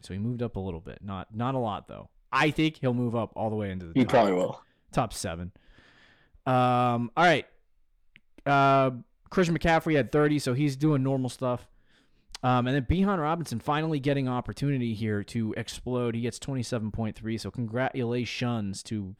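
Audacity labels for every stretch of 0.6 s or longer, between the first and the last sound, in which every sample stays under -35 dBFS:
5.480000	6.470000	silence
7.410000	8.160000	silence
11.570000	12.350000	silence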